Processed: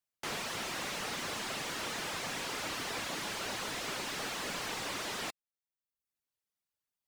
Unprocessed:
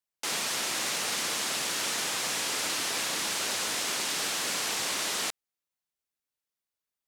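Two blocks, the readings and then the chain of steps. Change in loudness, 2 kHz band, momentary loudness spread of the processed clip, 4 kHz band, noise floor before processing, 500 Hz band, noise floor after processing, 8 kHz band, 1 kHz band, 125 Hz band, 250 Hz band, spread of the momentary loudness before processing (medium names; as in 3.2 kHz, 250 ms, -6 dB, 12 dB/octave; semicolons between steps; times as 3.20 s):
-8.0 dB, -5.5 dB, 0 LU, -8.5 dB, under -85 dBFS, -3.0 dB, under -85 dBFS, -12.0 dB, -3.5 dB, +1.5 dB, -1.5 dB, 0 LU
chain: reverb removal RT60 0.71 s; peaking EQ 110 Hz +5 dB 1.6 oct; slew-rate limiter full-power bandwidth 56 Hz; trim -1.5 dB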